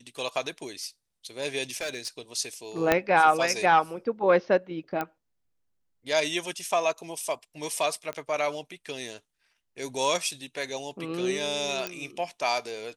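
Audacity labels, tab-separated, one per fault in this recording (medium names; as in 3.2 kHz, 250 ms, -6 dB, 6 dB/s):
1.700000	2.080000	clipped -27.5 dBFS
2.920000	2.920000	pop -6 dBFS
5.010000	5.010000	pop -16 dBFS
8.130000	8.130000	pop -21 dBFS
11.870000	11.870000	pop -14 dBFS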